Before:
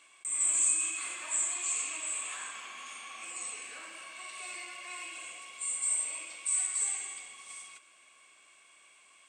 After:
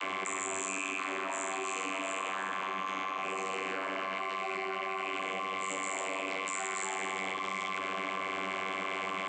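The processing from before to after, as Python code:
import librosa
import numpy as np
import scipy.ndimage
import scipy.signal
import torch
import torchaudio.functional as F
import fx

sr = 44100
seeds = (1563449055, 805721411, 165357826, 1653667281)

y = fx.lowpass(x, sr, hz=1500.0, slope=6)
y = fx.vocoder(y, sr, bands=32, carrier='saw', carrier_hz=95.7)
y = fx.env_flatten(y, sr, amount_pct=100)
y = y * librosa.db_to_amplitude(8.5)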